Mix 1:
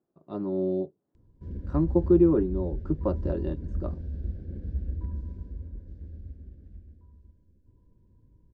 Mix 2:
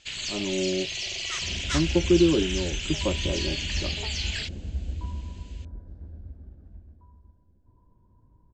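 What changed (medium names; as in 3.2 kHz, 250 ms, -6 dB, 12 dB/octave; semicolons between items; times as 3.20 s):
first sound: unmuted; second sound: add high-order bell 950 Hz +13 dB 1.3 oct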